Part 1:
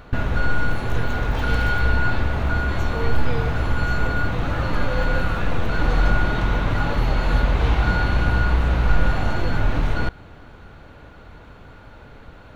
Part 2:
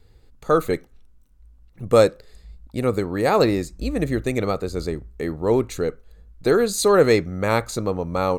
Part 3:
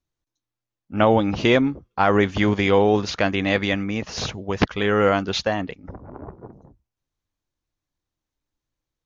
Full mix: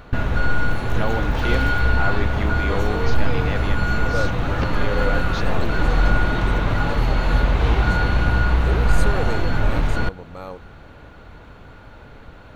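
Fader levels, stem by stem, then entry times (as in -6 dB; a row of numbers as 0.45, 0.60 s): +1.0, -13.5, -10.0 dB; 0.00, 2.20, 0.00 s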